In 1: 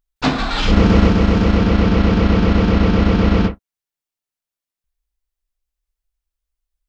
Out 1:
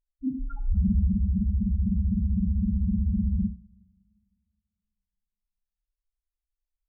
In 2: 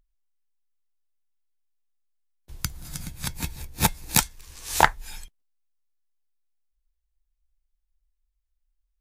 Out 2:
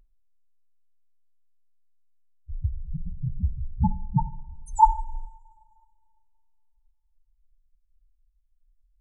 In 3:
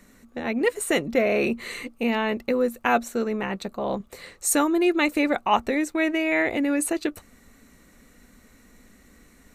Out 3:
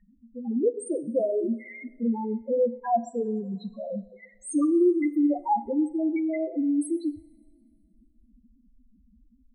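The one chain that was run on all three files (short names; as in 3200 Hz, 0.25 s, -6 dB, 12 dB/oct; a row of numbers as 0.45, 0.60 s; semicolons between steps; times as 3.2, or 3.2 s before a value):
loudest bins only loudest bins 2; two-slope reverb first 0.56 s, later 2.2 s, from -18 dB, DRR 12.5 dB; match loudness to -27 LUFS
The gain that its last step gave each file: -6.0, +11.5, +1.5 dB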